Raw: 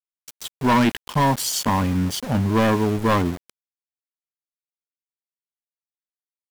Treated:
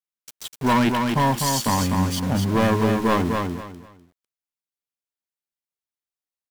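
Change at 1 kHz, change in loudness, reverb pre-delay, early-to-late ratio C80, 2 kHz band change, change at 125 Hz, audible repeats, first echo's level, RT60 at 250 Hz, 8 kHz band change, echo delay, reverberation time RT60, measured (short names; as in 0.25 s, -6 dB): 0.0 dB, -0.5 dB, none, none, 0.0 dB, -0.5 dB, 3, -4.5 dB, none, 0.0 dB, 0.25 s, none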